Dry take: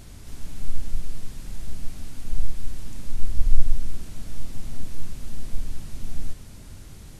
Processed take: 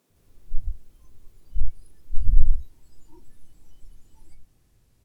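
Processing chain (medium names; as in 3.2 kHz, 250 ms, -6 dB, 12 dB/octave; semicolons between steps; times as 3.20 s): gliding tape speed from 166% -> 119%; spectral noise reduction 20 dB; bands offset in time highs, lows 100 ms, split 200 Hz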